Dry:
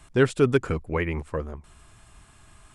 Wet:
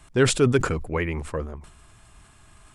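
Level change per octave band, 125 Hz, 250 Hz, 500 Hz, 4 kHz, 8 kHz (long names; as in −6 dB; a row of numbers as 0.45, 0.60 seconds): +2.0, +1.0, +0.5, +8.5, +14.0 decibels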